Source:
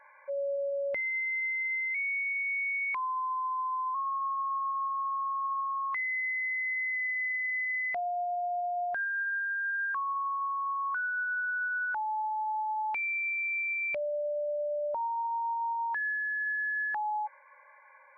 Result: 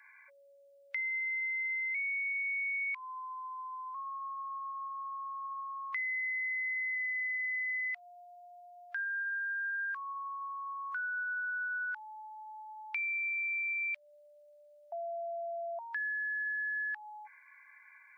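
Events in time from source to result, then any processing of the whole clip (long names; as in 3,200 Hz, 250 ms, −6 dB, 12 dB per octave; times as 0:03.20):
0:14.92–0:15.79: beep over 680 Hz −12 dBFS
whole clip: Bessel high-pass filter 2,400 Hz, order 4; downward compressor 4 to 1, threshold −42 dBFS; level +7.5 dB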